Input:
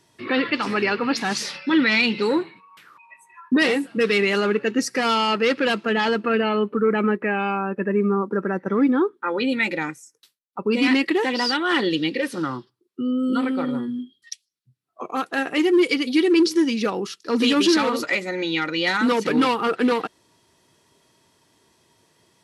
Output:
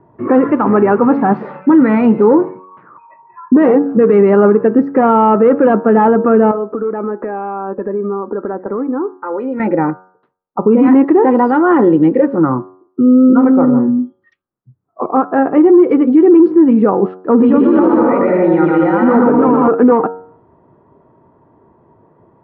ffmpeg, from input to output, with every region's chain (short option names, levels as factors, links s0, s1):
-filter_complex "[0:a]asettb=1/sr,asplit=3[s0][s1][s2];[s0]atrim=end=6.514[s3];[s1]atrim=start=6.51:end=9.6,asetpts=PTS-STARTPTS,afade=t=in:d=0.004:c=qsin,afade=t=out:st=3.086:d=0.004:c=qsin,equalizer=f=160:t=o:w=1.2:g=-12,acompressor=threshold=0.0316:ratio=6:attack=3.2:release=140:knee=1:detection=peak[s4];[s2]atrim=start=9.596[s5];[s3][s4]acrossfade=d=0.004:c1=hsin:c2=qsin[s6];[s6][s5]acrossfade=d=0.004:c1=qsin:c2=hsin,asettb=1/sr,asplit=3[s7][s8][s9];[s7]atrim=end=17.374[s10];[s8]atrim=start=17.37:end=19.68,asetpts=PTS-STARTPTS,afade=t=in:d=0.004:c=qsin,afade=t=out:st=2.306:d=0.004:c=qsin,aecho=1:1:120|198|248.7|281.7|303.1:0.794|0.631|0.501|0.398|0.316,atrim=end_sample=101871,acompressor=threshold=0.126:ratio=6:attack=3.2:release=140:knee=1:detection=peak[s11];[s9]atrim=start=19.676[s12];[s10][s11]acrossfade=d=0.004:c1=hsin:c2=qsin[s13];[s13][s12]acrossfade=d=0.004:c1=qsin:c2=hsin,lowpass=f=1100:w=0.5412,lowpass=f=1100:w=1.3066,bandreject=f=92.8:t=h:w=4,bandreject=f=185.6:t=h:w=4,bandreject=f=278.4:t=h:w=4,bandreject=f=371.2:t=h:w=4,bandreject=f=464:t=h:w=4,bandreject=f=556.8:t=h:w=4,bandreject=f=649.6:t=h:w=4,bandreject=f=742.4:t=h:w=4,bandreject=f=835.2:t=h:w=4,bandreject=f=928:t=h:w=4,bandreject=f=1020.8:t=h:w=4,bandreject=f=1113.6:t=h:w=4,bandreject=f=1206.4:t=h:w=4,bandreject=f=1299.2:t=h:w=4,bandreject=f=1392:t=h:w=4,bandreject=f=1484.8:t=h:w=4,bandreject=f=1577.6:t=h:w=4,bandreject=f=1670.4:t=h:w=4,alimiter=level_in=6.31:limit=0.891:release=50:level=0:latency=1,volume=0.891"